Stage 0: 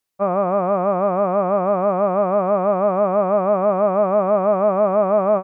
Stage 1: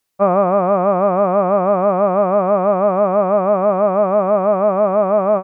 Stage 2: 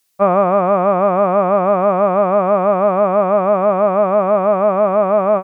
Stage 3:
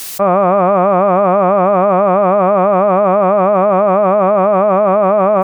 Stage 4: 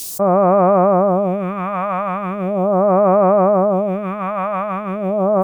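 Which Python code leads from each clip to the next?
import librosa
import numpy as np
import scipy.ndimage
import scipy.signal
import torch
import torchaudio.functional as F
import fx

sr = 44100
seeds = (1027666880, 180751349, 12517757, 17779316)

y1 = fx.rider(x, sr, range_db=10, speed_s=0.5)
y1 = y1 * librosa.db_to_amplitude(3.0)
y2 = fx.high_shelf(y1, sr, hz=2200.0, db=10.5)
y3 = fx.env_flatten(y2, sr, amount_pct=100)
y3 = y3 * librosa.db_to_amplitude(-1.0)
y4 = fx.phaser_stages(y3, sr, stages=2, low_hz=370.0, high_hz=4700.0, hz=0.39, feedback_pct=35)
y4 = y4 * librosa.db_to_amplitude(-2.0)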